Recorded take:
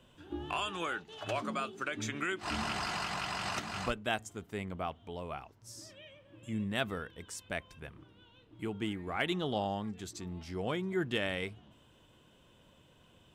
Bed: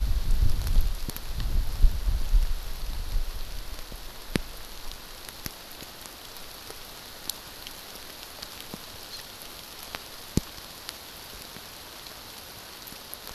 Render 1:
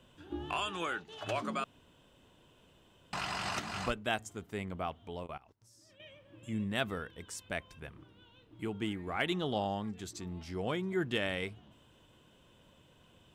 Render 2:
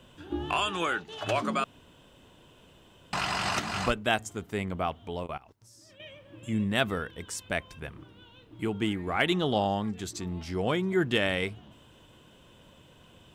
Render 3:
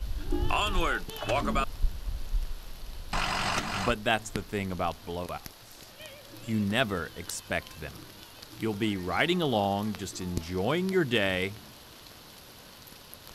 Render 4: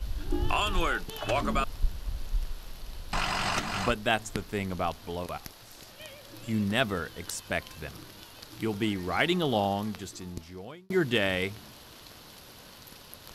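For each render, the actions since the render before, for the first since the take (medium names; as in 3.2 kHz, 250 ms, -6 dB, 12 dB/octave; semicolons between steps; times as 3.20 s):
1.64–3.13 s: room tone; 5.23–6.00 s: level held to a coarse grid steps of 21 dB
trim +7 dB
add bed -8 dB
9.65–10.90 s: fade out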